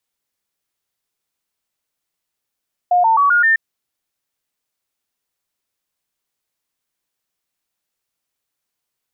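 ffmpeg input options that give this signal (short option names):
-f lavfi -i "aevalsrc='0.316*clip(min(mod(t,0.13),0.13-mod(t,0.13))/0.005,0,1)*sin(2*PI*714*pow(2,floor(t/0.13)/3)*mod(t,0.13))':d=0.65:s=44100"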